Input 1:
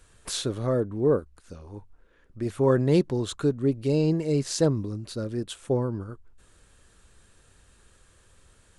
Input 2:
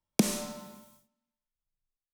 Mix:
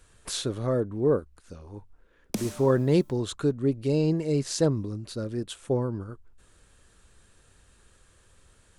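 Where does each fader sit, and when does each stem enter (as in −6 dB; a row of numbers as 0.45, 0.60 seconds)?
−1.0, −7.0 decibels; 0.00, 2.15 seconds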